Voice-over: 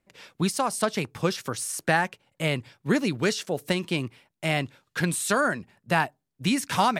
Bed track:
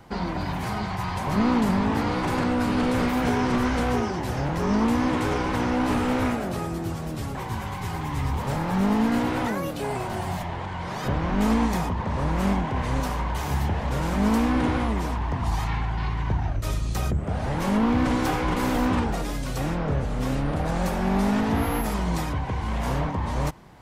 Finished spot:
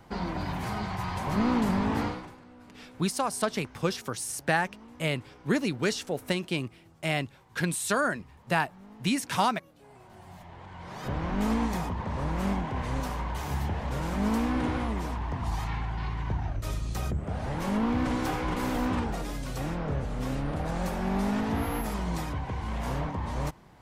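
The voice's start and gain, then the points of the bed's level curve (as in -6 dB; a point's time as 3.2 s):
2.60 s, -3.0 dB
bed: 2.05 s -4 dB
2.39 s -28 dB
9.7 s -28 dB
11.2 s -5.5 dB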